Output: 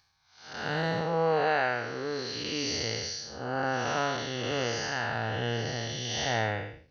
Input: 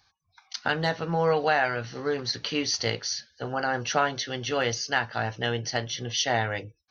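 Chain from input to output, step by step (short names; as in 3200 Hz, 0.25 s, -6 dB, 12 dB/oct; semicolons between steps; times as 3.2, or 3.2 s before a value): time blur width 0.271 s; 1.01–2.36 low shelf 210 Hz -7.5 dB; gain +1.5 dB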